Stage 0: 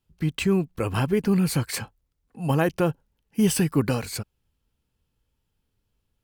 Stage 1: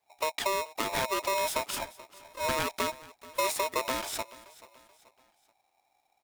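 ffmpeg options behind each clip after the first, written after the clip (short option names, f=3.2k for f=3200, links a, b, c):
-filter_complex "[0:a]acrossover=split=150|1700[a][b][c];[a]acompressor=threshold=-38dB:ratio=4[d];[b]acompressor=threshold=-31dB:ratio=4[e];[c]acompressor=threshold=-34dB:ratio=4[f];[d][e][f]amix=inputs=3:normalize=0,aecho=1:1:432|864|1296:0.106|0.0445|0.0187,aeval=exprs='val(0)*sgn(sin(2*PI*780*n/s))':c=same"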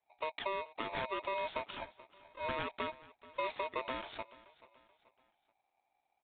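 -af "aresample=8000,aresample=44100,volume=-7.5dB"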